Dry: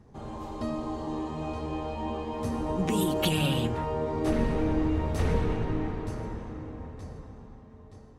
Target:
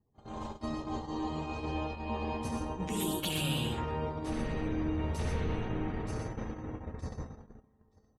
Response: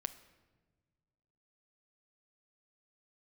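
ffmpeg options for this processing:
-af "highshelf=frequency=2300:gain=8,areverse,acompressor=threshold=-43dB:ratio=4,areverse,aecho=1:1:65|83|118|132:0.355|0.211|0.473|0.398,afftdn=noise_reduction=17:noise_floor=-63,agate=range=-28dB:threshold=-42dB:ratio=16:detection=peak,volume=7.5dB"

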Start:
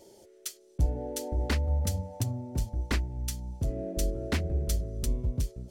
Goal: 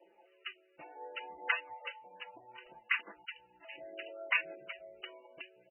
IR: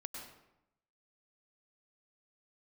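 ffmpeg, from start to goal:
-filter_complex "[0:a]lowshelf=frequency=400:gain=-10.5,acrossover=split=500|3000[link_01][link_02][link_03];[link_01]acompressor=threshold=-52dB:ratio=2[link_04];[link_04][link_02][link_03]amix=inputs=3:normalize=0,asettb=1/sr,asplit=3[link_05][link_06][link_07];[link_05]atrim=end=1.884[link_08];[link_06]atrim=start=1.88:end=4.09,asetpts=PTS-STARTPTS,afade=type=in:duration=0.004:curve=qsin,afade=type=out:start_time=2.206:duration=0.004:curve=qsin,acrossover=split=830|3700[link_09][link_10][link_11];[link_09]adelay=160[link_12];[link_11]adelay=780[link_13];[link_12][link_10][link_13]amix=inputs=3:normalize=0,atrim=end_sample=97461[link_14];[link_07]atrim=start=4.086[link_15];[link_08][link_14]acrossfade=duration=0.004:curve1=hsin:curve2=qsin[link_16];[link_16][link_15]acrossfade=duration=0.004:curve1=qsin:curve2=hsin,afftdn=noise_reduction=33:noise_floor=-64,acrusher=bits=11:mix=0:aa=0.000001,highpass=300,tiltshelf=frequency=970:gain=-10,aecho=1:1:5.9:0.83,aphaser=in_gain=1:out_gain=1:delay=3.6:decay=0.44:speed=0.66:type=triangular" -ar 16000 -c:a libmp3lame -b:a 8k

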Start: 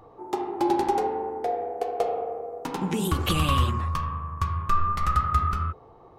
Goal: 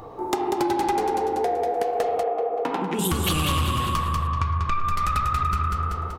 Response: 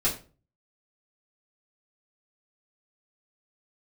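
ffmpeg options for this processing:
-filter_complex "[0:a]aecho=1:1:191|382|573|764|955:0.562|0.231|0.0945|0.0388|0.0159,aeval=exprs='0.398*(cos(1*acos(clip(val(0)/0.398,-1,1)))-cos(1*PI/2))+0.0631*(cos(5*acos(clip(val(0)/0.398,-1,1)))-cos(5*PI/2))':channel_layout=same,highshelf=frequency=3700:gain=6.5,acompressor=threshold=-26dB:ratio=6,asettb=1/sr,asplit=3[link_01][link_02][link_03];[link_01]atrim=end=2.234[link_04];[link_02]atrim=start=2.23:end=2.99,asetpts=PTS-STARTPTS,afade=type=in:duration=0.004:curve=qsin,afade=type=out:start_time=0.756:duration=0.004:curve=qsin,acrossover=split=200 3100:gain=0.126 1 0.1[link_05][link_06][link_07];[link_05][link_06][link_07]amix=inputs=3:normalize=0[link_08];[link_03]atrim=start=2.986[link_09];[link_04][link_08]acrossfade=duration=0.004:curve1=hsin:curve2=qsin[link_10];[link_10][link_09]acrossfade=duration=0.004:curve1=qsin:curve2=hsin,asettb=1/sr,asplit=3[link_11][link_12][link_13];[link_11]atrim=end=4.274[link_14];[link_12]atrim=start=4.27:end=4.85,asetpts=PTS-STARTPTS,afade=type=in:duration=0.004:curve=qsin,afade=type=out:start_time=0.576:duration=0.004:curve=qsin,lowpass=4700[link_15];[link_13]atrim=start=4.846[link_16];[link_14][link_15]acrossfade=duration=0.004:curve1=hsin:curve2=qsin[link_17];[link_17][link_16]acrossfade=duration=0.004:curve1=qsin:curve2=hsin,volume=5dB"

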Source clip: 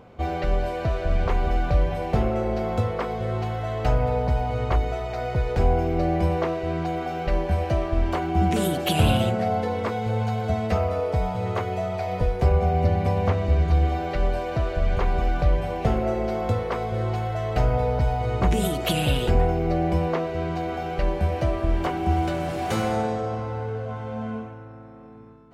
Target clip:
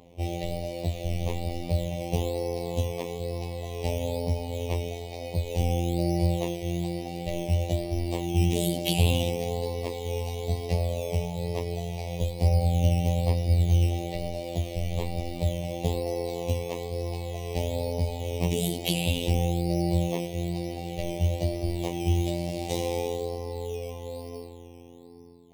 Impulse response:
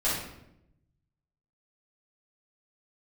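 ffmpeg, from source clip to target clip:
-filter_complex "[0:a]asuperstop=centerf=1400:order=4:qfactor=0.96,acrossover=split=440[link_01][link_02];[link_01]acrusher=samples=12:mix=1:aa=0.000001:lfo=1:lforange=7.2:lforate=1.1[link_03];[link_03][link_02]amix=inputs=2:normalize=0,afftfilt=real='hypot(re,im)*cos(PI*b)':imag='0':win_size=2048:overlap=0.75,adynamicequalizer=threshold=0.00282:dfrequency=2900:dqfactor=0.7:tfrequency=2900:tqfactor=0.7:attack=5:release=100:ratio=0.375:range=2:mode=boostabove:tftype=highshelf"

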